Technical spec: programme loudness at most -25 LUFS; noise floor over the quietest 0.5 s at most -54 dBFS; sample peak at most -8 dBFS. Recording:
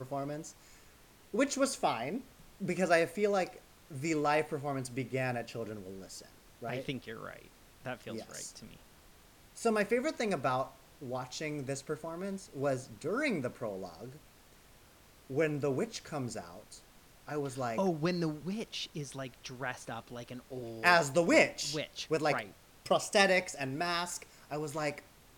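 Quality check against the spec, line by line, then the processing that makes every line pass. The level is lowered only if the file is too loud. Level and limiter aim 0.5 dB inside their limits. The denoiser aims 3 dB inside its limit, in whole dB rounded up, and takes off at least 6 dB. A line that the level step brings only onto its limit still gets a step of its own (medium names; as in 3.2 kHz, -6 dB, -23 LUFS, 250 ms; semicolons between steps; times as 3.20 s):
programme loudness -34.0 LUFS: pass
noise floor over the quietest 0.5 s -60 dBFS: pass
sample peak -10.5 dBFS: pass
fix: none needed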